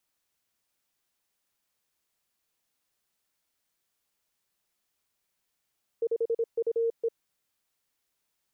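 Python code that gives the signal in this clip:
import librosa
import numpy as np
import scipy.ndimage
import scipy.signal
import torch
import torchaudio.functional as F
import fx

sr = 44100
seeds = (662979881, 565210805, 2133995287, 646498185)

y = fx.morse(sr, text='5UE', wpm=26, hz=460.0, level_db=-23.5)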